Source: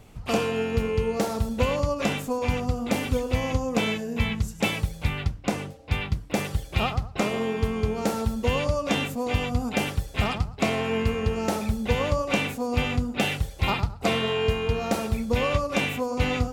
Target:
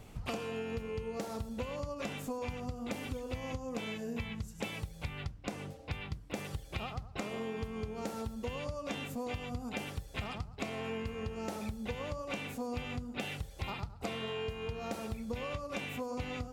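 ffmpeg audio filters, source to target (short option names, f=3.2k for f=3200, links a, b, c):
-af "acompressor=threshold=-33dB:ratio=12,volume=-2dB"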